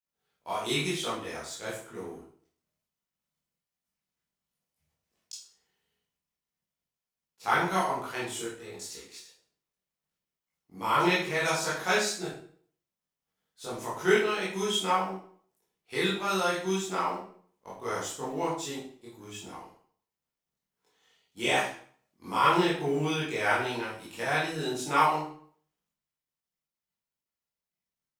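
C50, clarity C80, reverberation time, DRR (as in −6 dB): 3.0 dB, 7.0 dB, 0.50 s, −9.0 dB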